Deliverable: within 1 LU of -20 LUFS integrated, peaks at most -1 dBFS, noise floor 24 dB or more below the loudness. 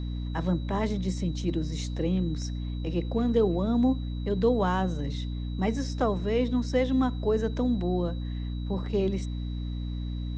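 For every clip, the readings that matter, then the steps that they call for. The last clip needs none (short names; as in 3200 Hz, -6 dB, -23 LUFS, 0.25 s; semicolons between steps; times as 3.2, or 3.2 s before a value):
hum 60 Hz; harmonics up to 300 Hz; hum level -30 dBFS; steady tone 3900 Hz; tone level -51 dBFS; loudness -28.5 LUFS; peak -12.5 dBFS; loudness target -20.0 LUFS
-> de-hum 60 Hz, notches 5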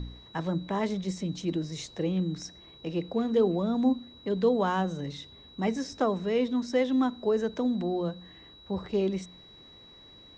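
hum none; steady tone 3900 Hz; tone level -51 dBFS
-> notch 3900 Hz, Q 30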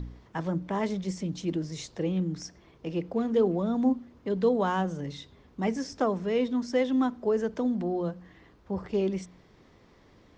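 steady tone none; loudness -29.5 LUFS; peak -14.0 dBFS; loudness target -20.0 LUFS
-> gain +9.5 dB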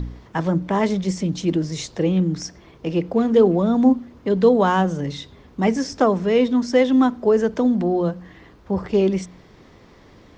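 loudness -20.0 LUFS; peak -4.5 dBFS; noise floor -49 dBFS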